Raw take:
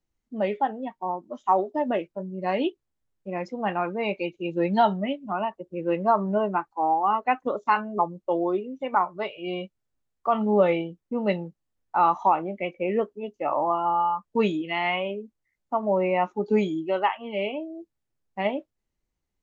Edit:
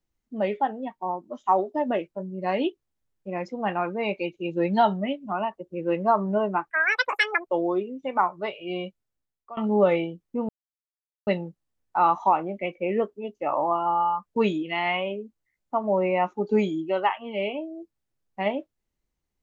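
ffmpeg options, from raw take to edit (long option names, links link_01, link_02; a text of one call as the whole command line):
ffmpeg -i in.wav -filter_complex "[0:a]asplit=5[link_01][link_02][link_03][link_04][link_05];[link_01]atrim=end=6.704[link_06];[link_02]atrim=start=6.7:end=8.25,asetpts=PTS-STARTPTS,asetrate=87759,aresample=44100,atrim=end_sample=34349,asetpts=PTS-STARTPTS[link_07];[link_03]atrim=start=8.246:end=10.34,asetpts=PTS-STARTPTS,afade=type=out:start_time=1.384:duration=0.71:silence=0.0891251[link_08];[link_04]atrim=start=10.34:end=11.26,asetpts=PTS-STARTPTS,afade=type=in:duration=0.004:curve=hsin:silence=0.0891251,afade=type=out:start_time=0.916:duration=0.004:curve=hsin,apad=pad_dur=0.78[link_09];[link_05]atrim=start=11.26,asetpts=PTS-STARTPTS,afade=type=in:duration=0.004:curve=hsin[link_10];[link_06][link_07]acrossfade=duration=0.004:curve1=hsin:curve2=hsin[link_11];[link_08][link_09][link_10]concat=n=3:v=0:a=1[link_12];[link_11][link_12]acrossfade=duration=0.004:curve1=hsin:curve2=hsin" out.wav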